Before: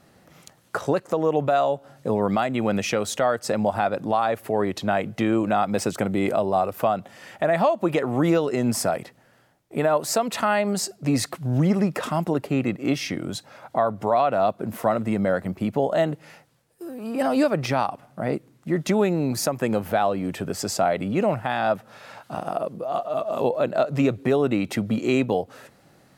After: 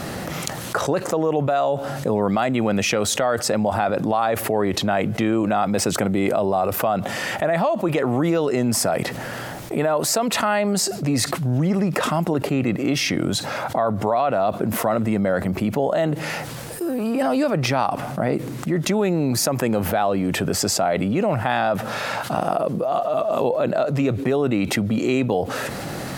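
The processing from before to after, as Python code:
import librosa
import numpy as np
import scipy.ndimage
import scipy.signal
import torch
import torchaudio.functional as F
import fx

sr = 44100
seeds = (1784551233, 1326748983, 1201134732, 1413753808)

y = fx.env_flatten(x, sr, amount_pct=70)
y = F.gain(torch.from_numpy(y), -1.5).numpy()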